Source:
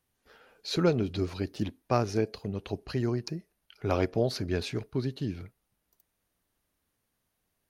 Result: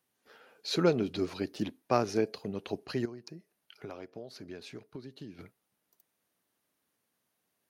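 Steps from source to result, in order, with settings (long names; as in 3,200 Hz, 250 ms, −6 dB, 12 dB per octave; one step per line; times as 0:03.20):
high-pass filter 180 Hz 12 dB per octave
0:03.05–0:05.39: downward compressor 6 to 1, threshold −42 dBFS, peak gain reduction 19 dB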